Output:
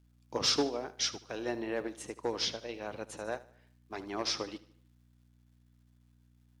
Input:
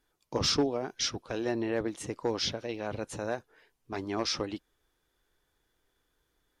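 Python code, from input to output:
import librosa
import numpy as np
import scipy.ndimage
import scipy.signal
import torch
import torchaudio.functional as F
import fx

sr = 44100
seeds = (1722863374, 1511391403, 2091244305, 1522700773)

p1 = fx.highpass(x, sr, hz=360.0, slope=6)
p2 = fx.level_steps(p1, sr, step_db=24)
p3 = p1 + F.gain(torch.from_numpy(p2), -1.0).numpy()
p4 = fx.add_hum(p3, sr, base_hz=60, snr_db=18)
p5 = fx.dmg_crackle(p4, sr, seeds[0], per_s=370.0, level_db=-56.0)
p6 = p5 + fx.echo_feedback(p5, sr, ms=75, feedback_pct=48, wet_db=-13.0, dry=0)
y = fx.upward_expand(p6, sr, threshold_db=-47.0, expansion=1.5)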